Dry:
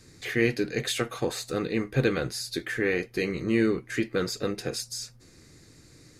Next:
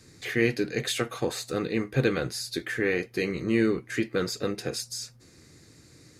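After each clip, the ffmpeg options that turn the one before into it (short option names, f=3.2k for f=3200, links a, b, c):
-af "highpass=58"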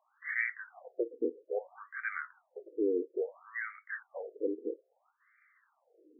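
-af "afftfilt=real='re*between(b*sr/1024,340*pow(1700/340,0.5+0.5*sin(2*PI*0.6*pts/sr))/1.41,340*pow(1700/340,0.5+0.5*sin(2*PI*0.6*pts/sr))*1.41)':imag='im*between(b*sr/1024,340*pow(1700/340,0.5+0.5*sin(2*PI*0.6*pts/sr))/1.41,340*pow(1700/340,0.5+0.5*sin(2*PI*0.6*pts/sr))*1.41)':win_size=1024:overlap=0.75,volume=-1.5dB"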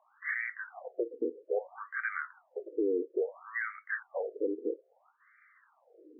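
-af "alimiter=level_in=4.5dB:limit=-24dB:level=0:latency=1:release=257,volume=-4.5dB,highpass=200,lowpass=2k,volume=7dB"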